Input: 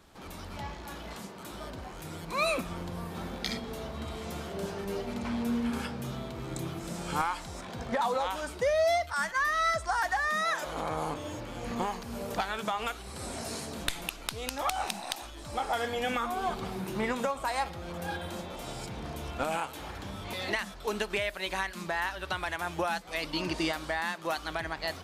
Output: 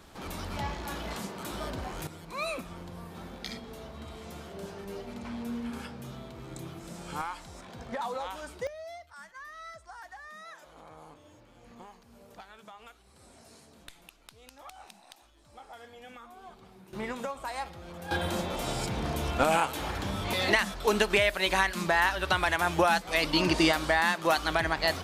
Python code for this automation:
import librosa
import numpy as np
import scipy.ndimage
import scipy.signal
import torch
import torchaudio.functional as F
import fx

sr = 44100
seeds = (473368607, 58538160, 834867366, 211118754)

y = fx.gain(x, sr, db=fx.steps((0.0, 5.0), (2.07, -5.5), (8.67, -17.5), (16.93, -5.0), (18.11, 7.0)))